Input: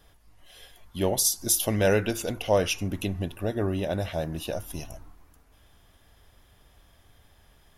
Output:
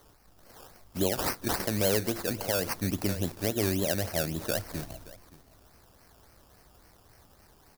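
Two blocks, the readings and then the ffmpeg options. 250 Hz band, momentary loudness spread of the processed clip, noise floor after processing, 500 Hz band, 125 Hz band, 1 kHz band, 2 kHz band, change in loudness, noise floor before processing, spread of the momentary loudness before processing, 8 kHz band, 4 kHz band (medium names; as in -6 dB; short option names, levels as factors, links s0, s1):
-1.5 dB, 10 LU, -60 dBFS, -4.0 dB, -3.0 dB, -2.5 dB, -1.5 dB, -3.0 dB, -60 dBFS, 12 LU, -6.5 dB, -2.0 dB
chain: -filter_complex "[0:a]tiltshelf=f=1100:g=3.5,aecho=1:1:574:0.106,acrossover=split=210|560|6000[s0][s1][s2][s3];[s3]acompressor=mode=upward:threshold=0.00282:ratio=2.5[s4];[s0][s1][s2][s4]amix=inputs=4:normalize=0,lowshelf=f=78:g=-8.5,acrusher=samples=17:mix=1:aa=0.000001:lfo=1:lforange=10.2:lforate=3.6,aexciter=amount=2.6:drive=3.7:freq=4400,alimiter=limit=0.237:level=0:latency=1:release=306,volume=0.841"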